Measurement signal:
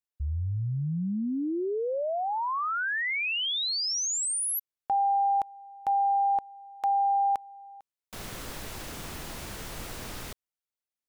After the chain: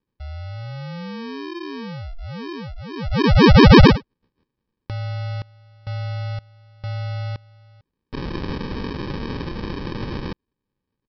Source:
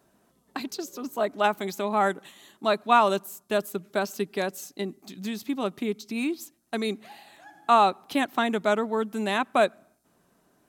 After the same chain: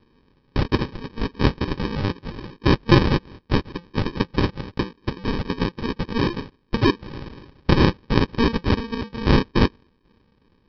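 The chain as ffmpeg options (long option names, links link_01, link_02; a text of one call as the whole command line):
ffmpeg -i in.wav -af "aexciter=amount=15:drive=5.2:freq=2500,aresample=11025,acrusher=samples=16:mix=1:aa=0.000001,aresample=44100,volume=-2dB" out.wav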